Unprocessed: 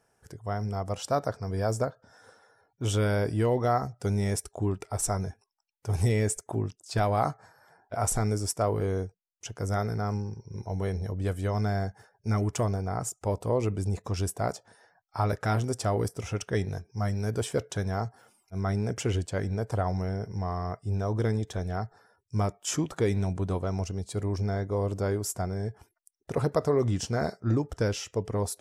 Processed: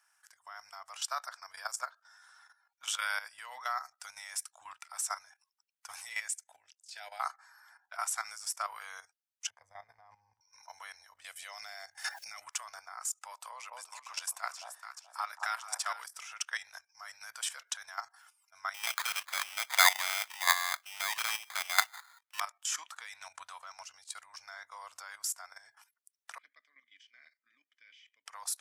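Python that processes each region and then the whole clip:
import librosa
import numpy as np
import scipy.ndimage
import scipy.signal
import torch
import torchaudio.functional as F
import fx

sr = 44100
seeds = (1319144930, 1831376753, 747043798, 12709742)

y = fx.chain(x, sr, fx.high_shelf(hz=5300.0, db=-7.0),
    fx.fixed_phaser(hz=470.0, stages=4), at=(6.28, 7.2))
y = fx.chain(y, sr, fx.moving_average(points=32),
    fx.peak_eq(hz=95.0, db=11.0, octaves=1.6),
    fx.transient(attack_db=-2, sustain_db=4), at=(9.5, 10.41))
y = fx.chain(y, sr, fx.band_shelf(hz=1200.0, db=-9.0, octaves=1.1),
    fx.hum_notches(base_hz=50, count=3),
    fx.pre_swell(db_per_s=32.0), at=(11.24, 12.42))
y = fx.chain(y, sr, fx.highpass(hz=280.0, slope=12),
    fx.echo_alternate(ms=214, hz=870.0, feedback_pct=53, wet_db=-3), at=(13.3, 16.04))
y = fx.chain(y, sr, fx.peak_eq(hz=910.0, db=13.5, octaves=2.3),
    fx.sample_hold(seeds[0], rate_hz=2800.0, jitter_pct=0), at=(18.74, 22.4))
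y = fx.chain(y, sr, fx.vowel_filter(vowel='i'),
    fx.high_shelf(hz=5100.0, db=-12.0),
    fx.notch_comb(f0_hz=1400.0), at=(26.38, 28.26))
y = scipy.signal.sosfilt(scipy.signal.cheby2(4, 50, 420.0, 'highpass', fs=sr, output='sos'), y)
y = fx.level_steps(y, sr, step_db=13)
y = y * librosa.db_to_amplitude(5.5)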